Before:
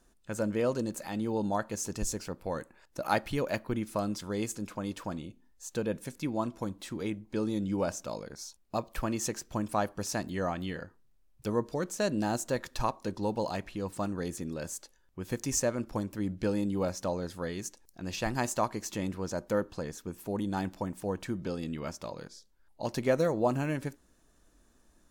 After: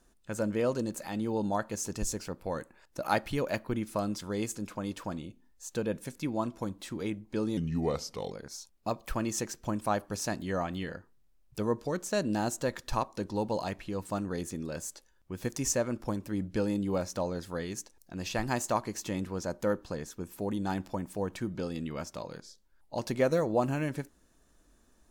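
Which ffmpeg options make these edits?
-filter_complex "[0:a]asplit=3[a][b][c];[a]atrim=end=7.574[d];[b]atrim=start=7.57:end=8.19,asetpts=PTS-STARTPTS,asetrate=36603,aresample=44100,atrim=end_sample=32942,asetpts=PTS-STARTPTS[e];[c]atrim=start=8.186[f];[d][e]acrossfade=d=0.004:c1=hsin:c2=hsin[g];[g][f]acrossfade=d=0.004:c1=hsin:c2=hsin"

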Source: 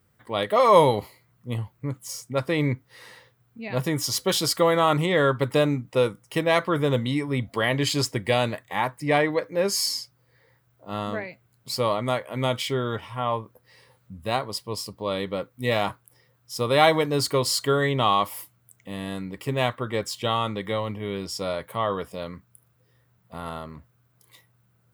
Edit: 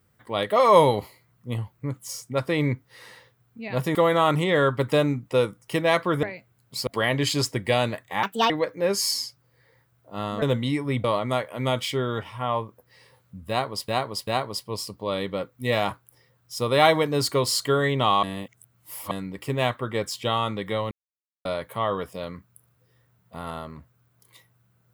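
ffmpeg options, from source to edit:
-filter_complex "[0:a]asplit=14[a][b][c][d][e][f][g][h][i][j][k][l][m][n];[a]atrim=end=3.952[o];[b]atrim=start=4.568:end=6.852[p];[c]atrim=start=11.168:end=11.812[q];[d]atrim=start=7.468:end=8.834[r];[e]atrim=start=8.83:end=9.25,asetpts=PTS-STARTPTS,asetrate=68355,aresample=44100[s];[f]atrim=start=9.246:end=11.172[t];[g]atrim=start=6.848:end=7.472[u];[h]atrim=start=11.808:end=14.652[v];[i]atrim=start=14.258:end=14.652[w];[j]atrim=start=14.258:end=18.222[x];[k]atrim=start=18.218:end=19.102,asetpts=PTS-STARTPTS,areverse[y];[l]atrim=start=19.098:end=20.9,asetpts=PTS-STARTPTS,afade=t=out:st=1.798:d=0.004:c=hsin[z];[m]atrim=start=20.9:end=21.44,asetpts=PTS-STARTPTS,volume=0[aa];[n]atrim=start=21.44,asetpts=PTS-STARTPTS,afade=t=in:d=0.004:c=hsin[ab];[o][p]acrossfade=d=0.004:c1=hsin:c2=hsin[ac];[ac][q]acrossfade=d=0.004:c1=hsin:c2=hsin[ad];[ad][r]acrossfade=d=0.004:c1=hsin:c2=hsin[ae];[ae][s]acrossfade=d=0.004:c1=hsin:c2=hsin[af];[af][t]acrossfade=d=0.004:c1=hsin:c2=hsin[ag];[ag][u]acrossfade=d=0.004:c1=hsin:c2=hsin[ah];[ah][v]acrossfade=d=0.004:c1=hsin:c2=hsin[ai];[ai][w]acrossfade=d=0.004:c1=hsin:c2=hsin[aj];[aj][x]acrossfade=d=0.004:c1=hsin:c2=hsin[ak];[ak][y]acrossfade=d=0.004:c1=hsin:c2=hsin[al];[z][aa][ab]concat=n=3:v=0:a=1[am];[al][am]acrossfade=d=0.004:c1=hsin:c2=hsin"

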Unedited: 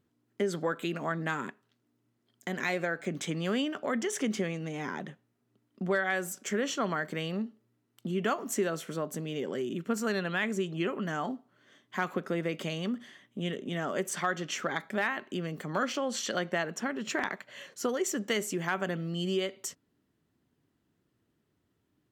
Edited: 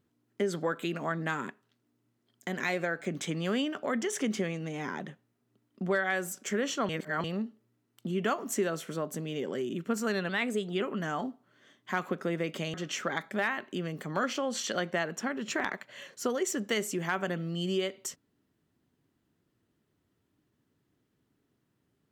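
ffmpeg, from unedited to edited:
-filter_complex "[0:a]asplit=6[a][b][c][d][e][f];[a]atrim=end=6.892[g];[b]atrim=start=6.888:end=7.242,asetpts=PTS-STARTPTS,areverse[h];[c]atrim=start=7.238:end=10.294[i];[d]atrim=start=10.29:end=10.86,asetpts=PTS-STARTPTS,asetrate=48510,aresample=44100[j];[e]atrim=start=10.856:end=12.792[k];[f]atrim=start=14.328[l];[g][h]acrossfade=d=0.004:c1=hsin:c2=hsin[m];[m][i]acrossfade=d=0.004:c1=hsin:c2=hsin[n];[n][j]acrossfade=d=0.004:c1=hsin:c2=hsin[o];[o][k]acrossfade=d=0.004:c1=hsin:c2=hsin[p];[p][l]acrossfade=d=0.004:c1=hsin:c2=hsin"

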